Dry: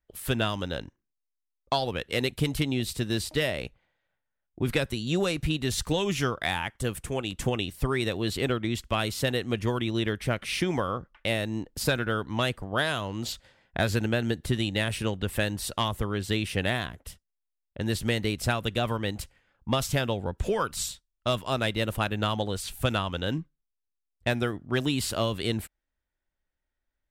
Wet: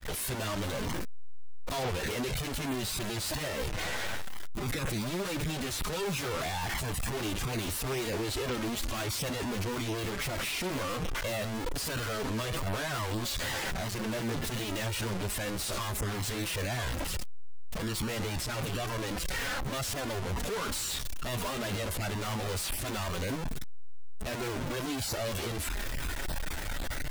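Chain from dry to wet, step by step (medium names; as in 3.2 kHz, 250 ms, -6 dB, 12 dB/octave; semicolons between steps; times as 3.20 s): one-bit comparator; granulator 169 ms, spray 10 ms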